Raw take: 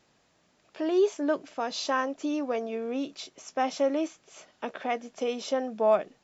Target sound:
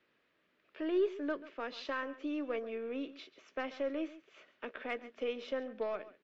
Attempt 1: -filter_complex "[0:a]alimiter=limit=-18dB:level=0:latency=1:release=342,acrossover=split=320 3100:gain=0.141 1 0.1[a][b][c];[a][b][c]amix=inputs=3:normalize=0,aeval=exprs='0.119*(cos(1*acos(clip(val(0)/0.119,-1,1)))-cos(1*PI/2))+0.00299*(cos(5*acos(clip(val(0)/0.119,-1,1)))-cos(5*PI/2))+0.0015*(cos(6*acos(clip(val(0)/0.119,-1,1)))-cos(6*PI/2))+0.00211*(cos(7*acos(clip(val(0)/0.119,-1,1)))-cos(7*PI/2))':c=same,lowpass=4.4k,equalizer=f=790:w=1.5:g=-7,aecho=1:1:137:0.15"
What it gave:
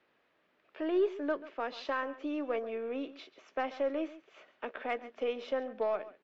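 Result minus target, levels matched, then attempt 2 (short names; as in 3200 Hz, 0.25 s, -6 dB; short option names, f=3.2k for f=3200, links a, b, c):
1000 Hz band +3.5 dB
-filter_complex "[0:a]alimiter=limit=-18dB:level=0:latency=1:release=342,acrossover=split=320 3100:gain=0.141 1 0.1[a][b][c];[a][b][c]amix=inputs=3:normalize=0,aeval=exprs='0.119*(cos(1*acos(clip(val(0)/0.119,-1,1)))-cos(1*PI/2))+0.00299*(cos(5*acos(clip(val(0)/0.119,-1,1)))-cos(5*PI/2))+0.0015*(cos(6*acos(clip(val(0)/0.119,-1,1)))-cos(6*PI/2))+0.00211*(cos(7*acos(clip(val(0)/0.119,-1,1)))-cos(7*PI/2))':c=same,lowpass=4.4k,equalizer=f=790:w=1.5:g=-16,aecho=1:1:137:0.15"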